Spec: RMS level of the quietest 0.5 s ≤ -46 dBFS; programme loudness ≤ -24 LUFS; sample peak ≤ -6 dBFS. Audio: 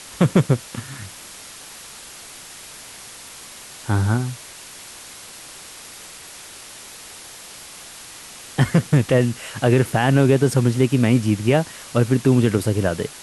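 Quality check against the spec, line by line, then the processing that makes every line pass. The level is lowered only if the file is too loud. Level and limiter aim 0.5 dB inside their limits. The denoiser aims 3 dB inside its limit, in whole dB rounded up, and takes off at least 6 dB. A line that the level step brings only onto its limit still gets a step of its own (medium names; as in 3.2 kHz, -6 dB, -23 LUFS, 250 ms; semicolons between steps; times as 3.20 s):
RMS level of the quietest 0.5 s -40 dBFS: fail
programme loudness -19.0 LUFS: fail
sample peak -5.0 dBFS: fail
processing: noise reduction 6 dB, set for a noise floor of -40 dBFS; trim -5.5 dB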